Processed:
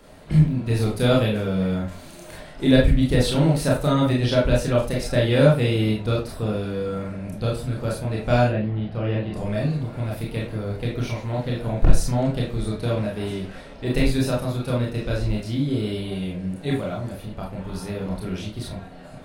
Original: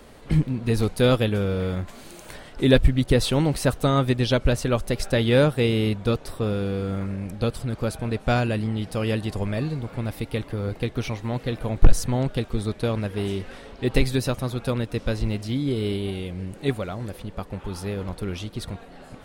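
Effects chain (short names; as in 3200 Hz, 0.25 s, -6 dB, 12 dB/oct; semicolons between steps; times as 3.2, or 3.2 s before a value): 8.47–9.34 air absorption 340 m; reverb RT60 0.30 s, pre-delay 25 ms, DRR -3.5 dB; gain -4.5 dB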